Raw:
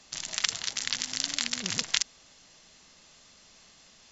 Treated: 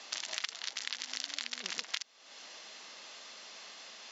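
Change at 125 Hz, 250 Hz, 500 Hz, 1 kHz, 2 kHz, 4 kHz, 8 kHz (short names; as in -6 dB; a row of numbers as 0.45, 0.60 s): under -20 dB, -15.0 dB, -4.0 dB, -4.5 dB, -6.0 dB, -7.0 dB, n/a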